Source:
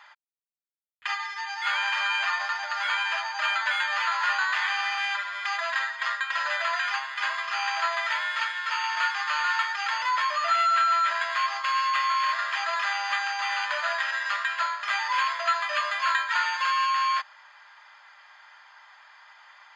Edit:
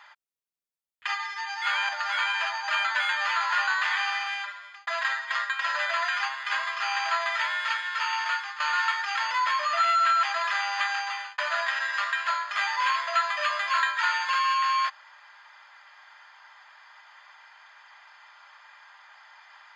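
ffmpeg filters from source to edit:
-filter_complex "[0:a]asplit=6[a][b][c][d][e][f];[a]atrim=end=1.892[g];[b]atrim=start=2.598:end=5.58,asetpts=PTS-STARTPTS,afade=t=out:st=2.172:d=0.81[h];[c]atrim=start=5.58:end=9.31,asetpts=PTS-STARTPTS,afade=t=in:d=0.004:c=hsin,afade=t=out:st=3.33:d=0.4:silence=0.237137[i];[d]atrim=start=9.31:end=10.942,asetpts=PTS-STARTPTS,afade=t=in:d=0.004:c=hsin:silence=0.237137[j];[e]atrim=start=12.548:end=13.7,asetpts=PTS-STARTPTS,afade=t=out:st=0.762:d=0.39[k];[f]atrim=start=13.7,asetpts=PTS-STARTPTS,afade=t=in:d=0.004:c=hsin[l];[h][i][j]concat=n=3:v=0:a=1[m];[g][m]acrossfade=d=0.004:c1=hsin:c2=hsin[n];[k][l]concat=n=2:v=0:a=1[o];[n][o]acrossfade=d=0.004:c1=hsin:c2=hsin"

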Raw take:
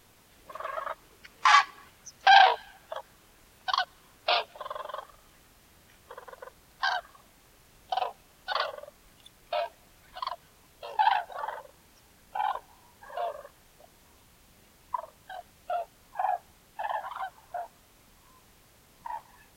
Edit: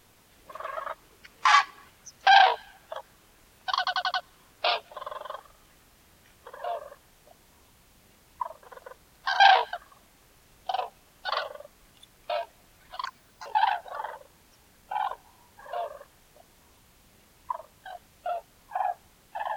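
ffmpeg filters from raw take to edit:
-filter_complex "[0:a]asplit=11[a][b][c][d][e][f][g][h][i][j][k];[a]atrim=end=3.872[l];[b]atrim=start=3.778:end=3.872[m];[c]atrim=start=3.778:end=3.872[n];[d]atrim=start=3.778:end=3.872[o];[e]atrim=start=3.778:end=6.192[p];[f]atrim=start=13.078:end=15.162[q];[g]atrim=start=6.188:end=6.962[r];[h]atrim=start=2.308:end=2.642[s];[i]atrim=start=6.958:end=10.284[t];[j]atrim=start=10.28:end=10.9,asetpts=PTS-STARTPTS,asetrate=66591,aresample=44100,atrim=end_sample=18107,asetpts=PTS-STARTPTS[u];[k]atrim=start=10.896[v];[l][m]acrossfade=d=0.004:c1=hsin:c2=hsin[w];[w][n]acrossfade=d=0.004:c1=hsin:c2=hsin[x];[x][o]acrossfade=d=0.004:c1=hsin:c2=hsin[y];[y][p]acrossfade=d=0.004:c1=hsin:c2=hsin[z];[z][q]acrossfade=d=0.004:c1=hsin:c2=hsin[aa];[aa][r]acrossfade=d=0.004:c1=hsin:c2=hsin[ab];[ab][s]acrossfade=d=0.004:c1=hsin:c2=hsin[ac];[ac][t]acrossfade=d=0.004:c1=hsin:c2=hsin[ad];[ad][u]acrossfade=d=0.004:c1=hsin:c2=hsin[ae];[ae][v]acrossfade=d=0.004:c1=hsin:c2=hsin"

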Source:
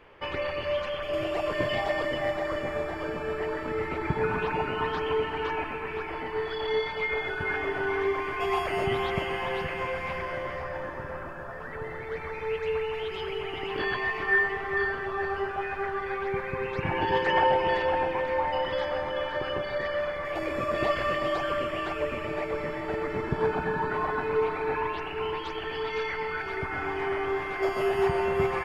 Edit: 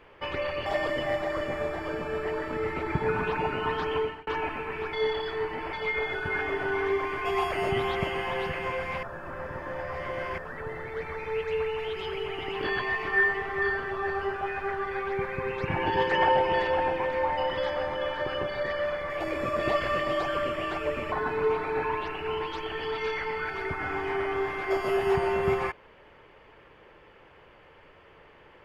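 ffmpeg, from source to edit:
-filter_complex "[0:a]asplit=8[a][b][c][d][e][f][g][h];[a]atrim=end=0.662[i];[b]atrim=start=1.808:end=5.42,asetpts=PTS-STARTPTS,afade=t=out:st=3.312:d=0.3[j];[c]atrim=start=5.42:end=6.082,asetpts=PTS-STARTPTS,afade=t=in:d=0.004:c=hsin[k];[d]atrim=start=6.078:end=6.882,asetpts=PTS-STARTPTS,areverse[l];[e]atrim=start=6.878:end=10.182[m];[f]atrim=start=10.178:end=11.532,asetpts=PTS-STARTPTS,areverse[n];[g]atrim=start=11.528:end=22.272[o];[h]atrim=start=24.038[p];[j][k]concat=n=2:v=0:a=1[q];[i][q]acrossfade=d=0.004:c1=hsin:c2=hsin[r];[r][l]acrossfade=d=0.004:c1=hsin:c2=hsin[s];[s][m]acrossfade=d=0.004:c1=hsin:c2=hsin[t];[t][n]acrossfade=d=0.004:c1=hsin:c2=hsin[u];[u][o]acrossfade=d=0.004:c1=hsin:c2=hsin[v];[v][p]acrossfade=d=0.004:c1=hsin:c2=hsin"

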